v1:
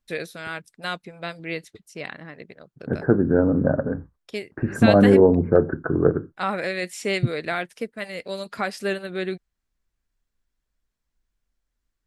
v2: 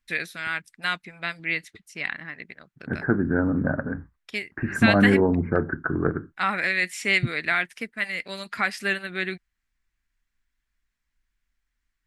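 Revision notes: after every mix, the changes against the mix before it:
master: add graphic EQ 125/500/2000 Hz -4/-10/+9 dB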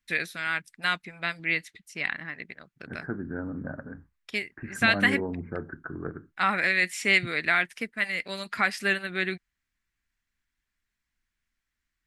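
second voice -11.5 dB

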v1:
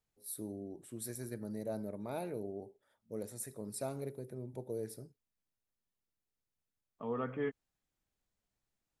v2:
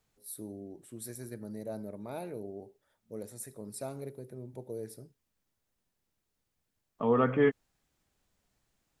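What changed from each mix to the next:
second voice +11.5 dB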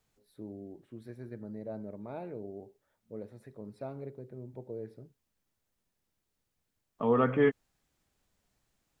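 first voice: add distance through air 380 m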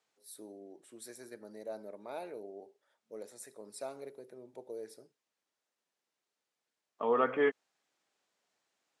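first voice: remove distance through air 380 m; master: add band-pass 430–7500 Hz

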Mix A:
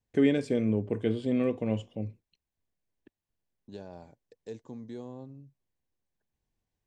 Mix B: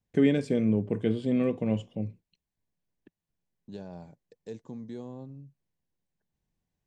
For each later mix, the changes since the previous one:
master: add peaking EQ 170 Hz +8.5 dB 0.53 oct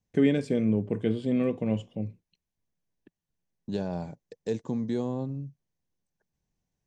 second voice +10.5 dB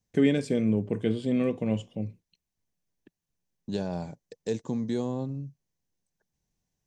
master: add treble shelf 4.1 kHz +7.5 dB

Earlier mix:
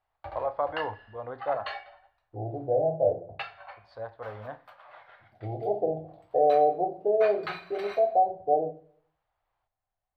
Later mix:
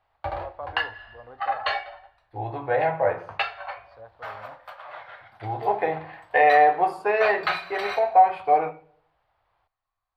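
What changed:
first voice -8.0 dB; second voice: remove elliptic low-pass 680 Hz, stop band 40 dB; background +10.5 dB

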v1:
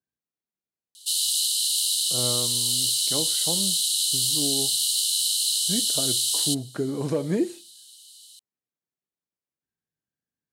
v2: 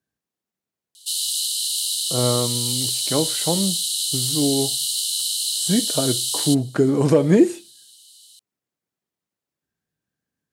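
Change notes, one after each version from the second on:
speech +10.0 dB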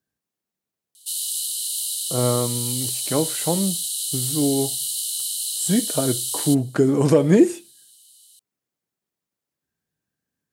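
background: add peaking EQ 4.3 kHz -8.5 dB 2.1 oct; master: add treble shelf 7.5 kHz +4.5 dB

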